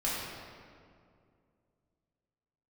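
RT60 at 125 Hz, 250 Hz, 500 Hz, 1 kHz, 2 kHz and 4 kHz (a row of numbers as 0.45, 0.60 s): 3.0, 2.8, 2.5, 2.1, 1.7, 1.3 s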